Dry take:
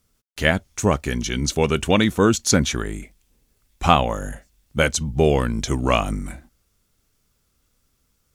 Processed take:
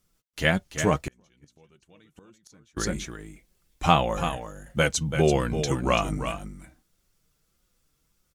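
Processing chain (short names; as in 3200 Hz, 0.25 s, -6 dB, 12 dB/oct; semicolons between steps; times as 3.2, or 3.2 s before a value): echo 0.336 s -9 dB; flange 1.7 Hz, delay 5.4 ms, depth 1.3 ms, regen +35%; 1.02–2.77 flipped gate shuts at -18 dBFS, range -35 dB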